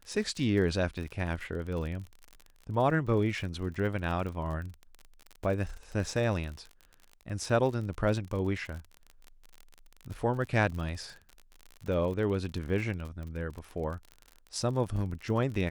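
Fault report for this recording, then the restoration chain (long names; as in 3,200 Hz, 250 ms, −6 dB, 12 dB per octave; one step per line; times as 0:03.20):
surface crackle 42 per second −37 dBFS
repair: click removal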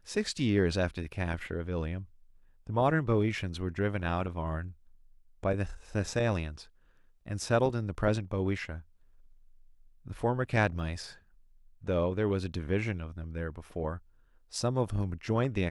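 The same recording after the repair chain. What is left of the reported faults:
none of them is left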